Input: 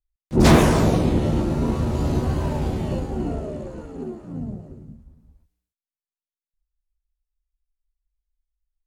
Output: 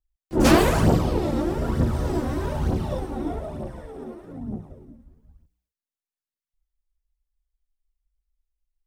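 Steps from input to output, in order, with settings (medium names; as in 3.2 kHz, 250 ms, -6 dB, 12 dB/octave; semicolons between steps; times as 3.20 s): formant shift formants +4 st; phaser 1.1 Hz, delay 3.9 ms, feedback 54%; trim -4 dB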